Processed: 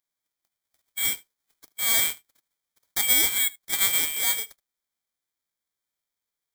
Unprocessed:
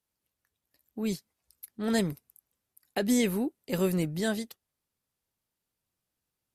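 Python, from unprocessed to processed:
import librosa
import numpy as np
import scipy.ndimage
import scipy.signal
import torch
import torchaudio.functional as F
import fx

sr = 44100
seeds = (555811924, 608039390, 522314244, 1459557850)

p1 = fx.envelope_flatten(x, sr, power=0.3)
p2 = scipy.signal.sosfilt(scipy.signal.butter(2, 78.0, 'highpass', fs=sr, output='sos'), p1)
p3 = p2 + fx.echo_single(p2, sr, ms=76, db=-23.0, dry=0)
p4 = fx.freq_invert(p3, sr, carrier_hz=2500)
p5 = (np.kron(p4[::8], np.eye(8)[0]) * 8)[:len(p4)]
y = p5 * librosa.db_to_amplitude(-2.5)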